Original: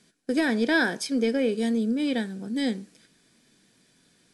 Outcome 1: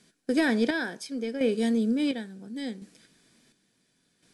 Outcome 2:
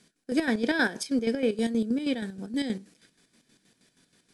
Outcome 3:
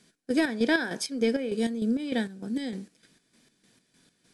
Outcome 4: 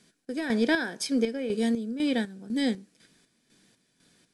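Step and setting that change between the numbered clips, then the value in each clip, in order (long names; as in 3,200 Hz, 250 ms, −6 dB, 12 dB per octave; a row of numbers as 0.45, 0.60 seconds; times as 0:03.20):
square-wave tremolo, speed: 0.71, 6.3, 3.3, 2 Hertz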